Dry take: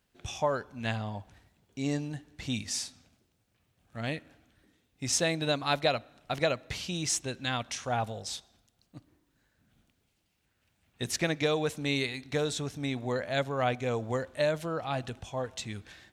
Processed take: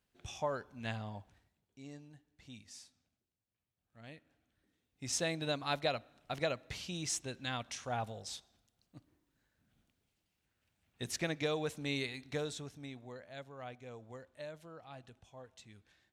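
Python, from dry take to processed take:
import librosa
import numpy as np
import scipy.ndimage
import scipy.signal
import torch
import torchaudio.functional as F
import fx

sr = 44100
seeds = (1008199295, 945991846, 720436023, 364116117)

y = fx.gain(x, sr, db=fx.line((1.18, -7.5), (1.89, -19.5), (3.98, -19.5), (5.21, -7.0), (12.32, -7.0), (13.2, -18.5)))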